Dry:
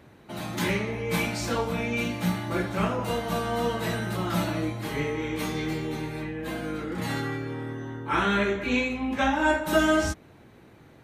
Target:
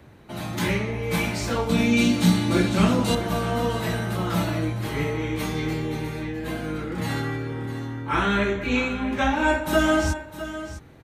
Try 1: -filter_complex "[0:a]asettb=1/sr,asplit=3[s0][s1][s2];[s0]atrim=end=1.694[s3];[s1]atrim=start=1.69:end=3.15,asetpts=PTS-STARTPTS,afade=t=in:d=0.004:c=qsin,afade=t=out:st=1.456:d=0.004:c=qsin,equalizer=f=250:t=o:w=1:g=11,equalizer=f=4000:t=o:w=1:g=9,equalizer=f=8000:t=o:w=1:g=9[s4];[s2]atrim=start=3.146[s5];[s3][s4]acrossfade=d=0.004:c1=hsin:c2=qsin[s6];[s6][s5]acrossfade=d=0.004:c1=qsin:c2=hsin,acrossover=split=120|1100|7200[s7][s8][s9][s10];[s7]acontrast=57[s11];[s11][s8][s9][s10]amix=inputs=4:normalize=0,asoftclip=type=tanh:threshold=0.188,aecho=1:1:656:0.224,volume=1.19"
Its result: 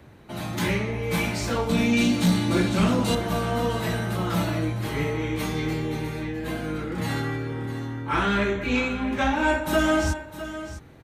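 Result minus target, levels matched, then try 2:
saturation: distortion +17 dB
-filter_complex "[0:a]asettb=1/sr,asplit=3[s0][s1][s2];[s0]atrim=end=1.694[s3];[s1]atrim=start=1.69:end=3.15,asetpts=PTS-STARTPTS,afade=t=in:d=0.004:c=qsin,afade=t=out:st=1.456:d=0.004:c=qsin,equalizer=f=250:t=o:w=1:g=11,equalizer=f=4000:t=o:w=1:g=9,equalizer=f=8000:t=o:w=1:g=9[s4];[s2]atrim=start=3.146[s5];[s3][s4]acrossfade=d=0.004:c1=hsin:c2=qsin[s6];[s6][s5]acrossfade=d=0.004:c1=qsin:c2=hsin,acrossover=split=120|1100|7200[s7][s8][s9][s10];[s7]acontrast=57[s11];[s11][s8][s9][s10]amix=inputs=4:normalize=0,asoftclip=type=tanh:threshold=0.631,aecho=1:1:656:0.224,volume=1.19"

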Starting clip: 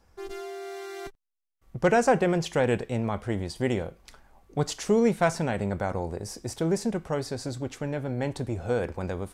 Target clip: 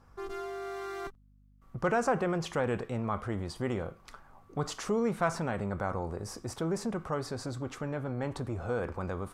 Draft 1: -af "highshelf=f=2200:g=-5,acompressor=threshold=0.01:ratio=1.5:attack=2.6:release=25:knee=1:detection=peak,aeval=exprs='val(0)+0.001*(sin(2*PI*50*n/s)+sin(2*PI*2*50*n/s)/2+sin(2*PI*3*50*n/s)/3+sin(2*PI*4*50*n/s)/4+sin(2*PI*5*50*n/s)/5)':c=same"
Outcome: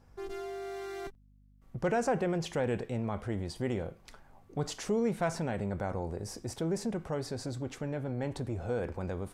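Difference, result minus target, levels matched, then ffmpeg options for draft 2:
1 kHz band -3.0 dB
-af "highshelf=f=2200:g=-5,acompressor=threshold=0.01:ratio=1.5:attack=2.6:release=25:knee=1:detection=peak,equalizer=f=1200:t=o:w=0.55:g=11,aeval=exprs='val(0)+0.001*(sin(2*PI*50*n/s)+sin(2*PI*2*50*n/s)/2+sin(2*PI*3*50*n/s)/3+sin(2*PI*4*50*n/s)/4+sin(2*PI*5*50*n/s)/5)':c=same"

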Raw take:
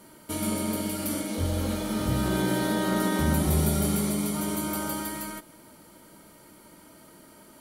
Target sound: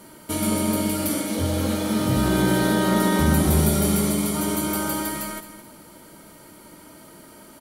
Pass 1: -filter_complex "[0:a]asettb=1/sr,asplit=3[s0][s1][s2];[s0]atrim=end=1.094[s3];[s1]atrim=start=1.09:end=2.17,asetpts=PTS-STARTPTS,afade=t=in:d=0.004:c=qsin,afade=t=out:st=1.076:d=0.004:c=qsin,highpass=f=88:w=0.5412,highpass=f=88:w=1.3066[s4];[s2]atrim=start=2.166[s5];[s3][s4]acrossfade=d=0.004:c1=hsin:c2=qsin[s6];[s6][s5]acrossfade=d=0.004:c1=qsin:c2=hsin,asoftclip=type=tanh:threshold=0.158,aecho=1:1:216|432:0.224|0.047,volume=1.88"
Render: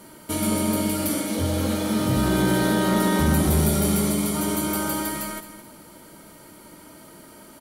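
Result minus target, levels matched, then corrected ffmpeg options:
saturation: distortion +15 dB
-filter_complex "[0:a]asettb=1/sr,asplit=3[s0][s1][s2];[s0]atrim=end=1.094[s3];[s1]atrim=start=1.09:end=2.17,asetpts=PTS-STARTPTS,afade=t=in:d=0.004:c=qsin,afade=t=out:st=1.076:d=0.004:c=qsin,highpass=f=88:w=0.5412,highpass=f=88:w=1.3066[s4];[s2]atrim=start=2.166[s5];[s3][s4]acrossfade=d=0.004:c1=hsin:c2=qsin[s6];[s6][s5]acrossfade=d=0.004:c1=qsin:c2=hsin,asoftclip=type=tanh:threshold=0.422,aecho=1:1:216|432:0.224|0.047,volume=1.88"

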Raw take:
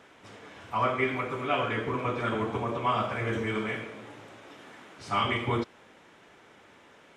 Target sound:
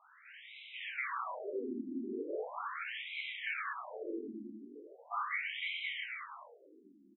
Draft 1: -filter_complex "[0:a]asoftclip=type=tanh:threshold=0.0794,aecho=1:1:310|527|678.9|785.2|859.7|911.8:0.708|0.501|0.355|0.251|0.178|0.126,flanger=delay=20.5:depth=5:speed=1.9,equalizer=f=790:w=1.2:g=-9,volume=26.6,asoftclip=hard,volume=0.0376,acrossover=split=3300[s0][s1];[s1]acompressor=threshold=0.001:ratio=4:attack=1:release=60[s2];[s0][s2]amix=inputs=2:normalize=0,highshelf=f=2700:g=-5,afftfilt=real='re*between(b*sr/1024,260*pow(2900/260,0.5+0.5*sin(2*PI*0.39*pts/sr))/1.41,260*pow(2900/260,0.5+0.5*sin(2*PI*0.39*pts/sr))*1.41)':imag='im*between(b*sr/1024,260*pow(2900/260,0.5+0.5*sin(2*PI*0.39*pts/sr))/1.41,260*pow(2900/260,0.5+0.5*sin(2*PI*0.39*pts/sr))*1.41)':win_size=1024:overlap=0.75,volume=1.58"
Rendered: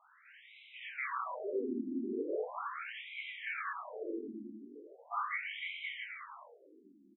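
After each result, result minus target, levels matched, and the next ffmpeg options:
overload inside the chain: distortion -10 dB; 4 kHz band -4.5 dB
-filter_complex "[0:a]asoftclip=type=tanh:threshold=0.0794,aecho=1:1:310|527|678.9|785.2|859.7|911.8:0.708|0.501|0.355|0.251|0.178|0.126,flanger=delay=20.5:depth=5:speed=1.9,equalizer=f=790:w=1.2:g=-9,volume=53.1,asoftclip=hard,volume=0.0188,acrossover=split=3300[s0][s1];[s1]acompressor=threshold=0.001:ratio=4:attack=1:release=60[s2];[s0][s2]amix=inputs=2:normalize=0,highshelf=f=2700:g=-5,afftfilt=real='re*between(b*sr/1024,260*pow(2900/260,0.5+0.5*sin(2*PI*0.39*pts/sr))/1.41,260*pow(2900/260,0.5+0.5*sin(2*PI*0.39*pts/sr))*1.41)':imag='im*between(b*sr/1024,260*pow(2900/260,0.5+0.5*sin(2*PI*0.39*pts/sr))/1.41,260*pow(2900/260,0.5+0.5*sin(2*PI*0.39*pts/sr))*1.41)':win_size=1024:overlap=0.75,volume=1.58"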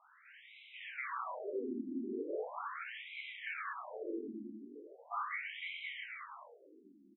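4 kHz band -3.5 dB
-filter_complex "[0:a]asoftclip=type=tanh:threshold=0.0794,aecho=1:1:310|527|678.9|785.2|859.7|911.8:0.708|0.501|0.355|0.251|0.178|0.126,flanger=delay=20.5:depth=5:speed=1.9,equalizer=f=790:w=1.2:g=-9,volume=53.1,asoftclip=hard,volume=0.0188,acrossover=split=3300[s0][s1];[s1]acompressor=threshold=0.001:ratio=4:attack=1:release=60[s2];[s0][s2]amix=inputs=2:normalize=0,highshelf=f=2700:g=6,afftfilt=real='re*between(b*sr/1024,260*pow(2900/260,0.5+0.5*sin(2*PI*0.39*pts/sr))/1.41,260*pow(2900/260,0.5+0.5*sin(2*PI*0.39*pts/sr))*1.41)':imag='im*between(b*sr/1024,260*pow(2900/260,0.5+0.5*sin(2*PI*0.39*pts/sr))/1.41,260*pow(2900/260,0.5+0.5*sin(2*PI*0.39*pts/sr))*1.41)':win_size=1024:overlap=0.75,volume=1.58"

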